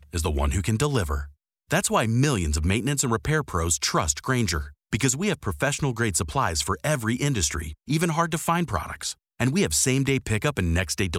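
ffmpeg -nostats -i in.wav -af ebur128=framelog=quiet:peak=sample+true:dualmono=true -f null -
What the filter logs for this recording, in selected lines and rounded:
Integrated loudness:
  I:         -21.5 LUFS
  Threshold: -31.6 LUFS
Loudness range:
  LRA:         1.3 LU
  Threshold: -41.6 LUFS
  LRA low:   -22.1 LUFS
  LRA high:  -20.8 LUFS
Sample peak:
  Peak:       -8.4 dBFS
True peak:
  Peak:       -8.4 dBFS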